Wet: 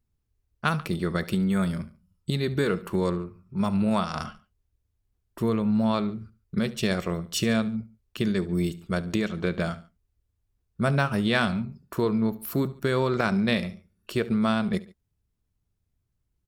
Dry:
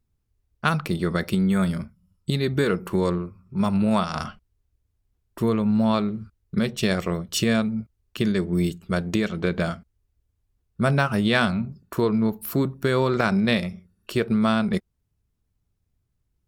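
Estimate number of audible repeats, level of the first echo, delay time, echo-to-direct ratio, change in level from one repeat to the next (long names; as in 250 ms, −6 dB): 2, −19.0 dB, 71 ms, −18.0 dB, −6.0 dB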